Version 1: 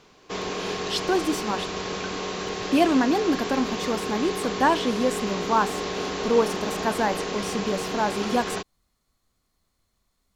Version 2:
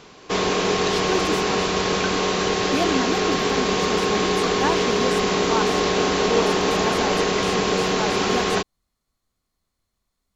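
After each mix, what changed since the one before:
speech -4.5 dB; background +9.0 dB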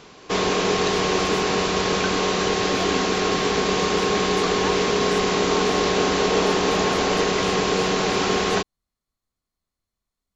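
speech -7.5 dB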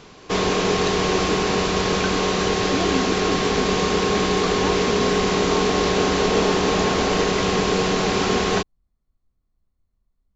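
speech: add tilt EQ -3.5 dB/octave; background: add bass shelf 150 Hz +7 dB

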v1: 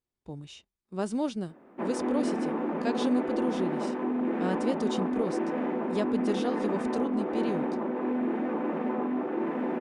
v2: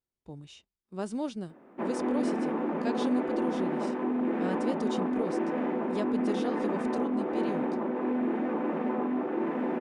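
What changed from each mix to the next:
speech -3.5 dB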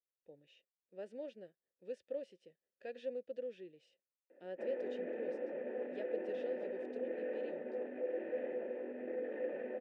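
background: entry +2.80 s; master: add vowel filter e

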